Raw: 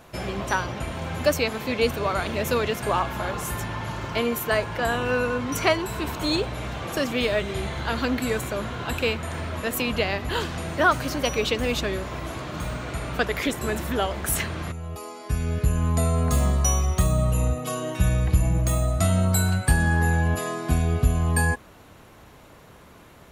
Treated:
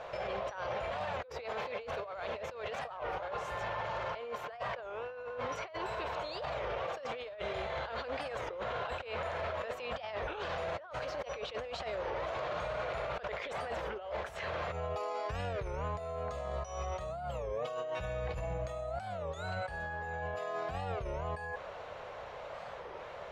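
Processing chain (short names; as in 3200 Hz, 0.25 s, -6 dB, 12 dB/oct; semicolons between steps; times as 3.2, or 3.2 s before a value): resonant low shelf 390 Hz -11 dB, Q 3; negative-ratio compressor -34 dBFS, ratio -1; limiter -25.5 dBFS, peak gain reduction 10 dB; air absorption 180 m; record warp 33 1/3 rpm, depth 250 cents; gain -2 dB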